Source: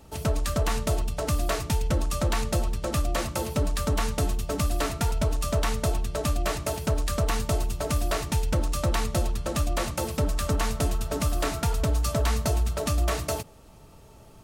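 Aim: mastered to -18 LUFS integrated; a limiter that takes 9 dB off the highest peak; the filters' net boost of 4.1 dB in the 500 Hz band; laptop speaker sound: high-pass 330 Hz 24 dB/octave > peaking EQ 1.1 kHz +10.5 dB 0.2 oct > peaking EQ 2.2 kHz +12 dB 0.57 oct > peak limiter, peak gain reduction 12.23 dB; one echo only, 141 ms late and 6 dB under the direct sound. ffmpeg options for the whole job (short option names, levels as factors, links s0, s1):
-af "equalizer=f=500:t=o:g=5,alimiter=limit=0.0841:level=0:latency=1,highpass=f=330:w=0.5412,highpass=f=330:w=1.3066,equalizer=f=1100:t=o:w=0.2:g=10.5,equalizer=f=2200:t=o:w=0.57:g=12,aecho=1:1:141:0.501,volume=8.41,alimiter=limit=0.335:level=0:latency=1"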